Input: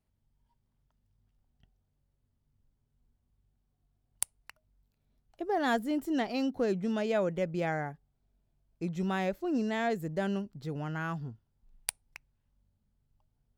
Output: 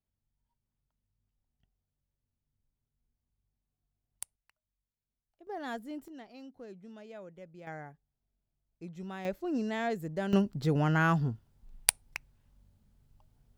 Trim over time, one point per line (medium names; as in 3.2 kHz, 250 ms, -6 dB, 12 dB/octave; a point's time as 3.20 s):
-9.5 dB
from 4.36 s -19.5 dB
from 5.47 s -10 dB
from 6.08 s -18 dB
from 7.67 s -10 dB
from 9.25 s -2 dB
from 10.33 s +9 dB